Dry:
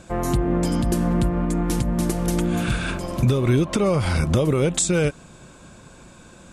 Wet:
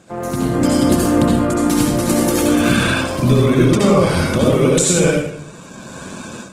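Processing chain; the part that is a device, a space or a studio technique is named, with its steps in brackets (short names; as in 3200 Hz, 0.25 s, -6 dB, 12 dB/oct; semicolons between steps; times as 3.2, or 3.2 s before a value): far-field microphone of a smart speaker (reverb RT60 0.70 s, pre-delay 63 ms, DRR -3.5 dB; HPF 130 Hz 12 dB/oct; AGC gain up to 12.5 dB; gain -1 dB; Opus 16 kbps 48000 Hz)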